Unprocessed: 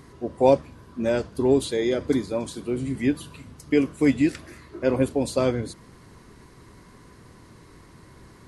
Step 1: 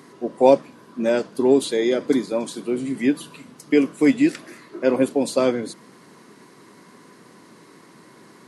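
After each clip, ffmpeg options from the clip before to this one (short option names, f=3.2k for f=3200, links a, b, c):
-af "highpass=f=180:w=0.5412,highpass=f=180:w=1.3066,volume=3.5dB"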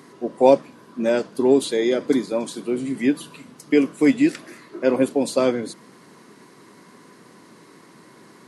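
-af anull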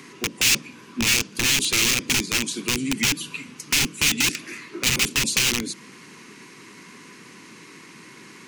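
-filter_complex "[0:a]aeval=exprs='(mod(7.94*val(0)+1,2)-1)/7.94':c=same,acrossover=split=370|3000[a][b][c];[b]acompressor=threshold=-35dB:ratio=6[d];[a][d][c]amix=inputs=3:normalize=0,equalizer=f=630:t=o:w=0.67:g=-11,equalizer=f=2.5k:t=o:w=0.67:g=12,equalizer=f=6.3k:t=o:w=0.67:g=7,volume=2.5dB"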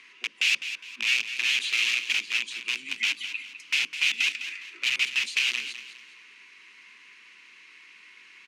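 -filter_complex "[0:a]bandpass=f=2.6k:t=q:w=2.4:csg=0,asplit=2[a][b];[b]aecho=0:1:205|410|615|820:0.282|0.0986|0.0345|0.0121[c];[a][c]amix=inputs=2:normalize=0"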